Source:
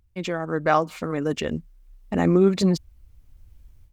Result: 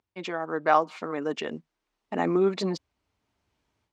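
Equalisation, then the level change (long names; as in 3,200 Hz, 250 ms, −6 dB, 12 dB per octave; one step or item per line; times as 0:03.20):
band-pass filter 290–5,400 Hz
parametric band 910 Hz +4.5 dB 0.75 octaves
notch filter 530 Hz, Q 12
−3.0 dB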